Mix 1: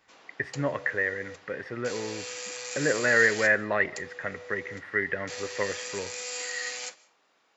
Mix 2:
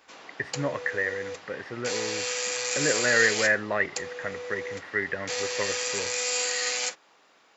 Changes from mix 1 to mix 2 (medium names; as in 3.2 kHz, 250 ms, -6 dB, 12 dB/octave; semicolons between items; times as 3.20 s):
background +8.5 dB; reverb: off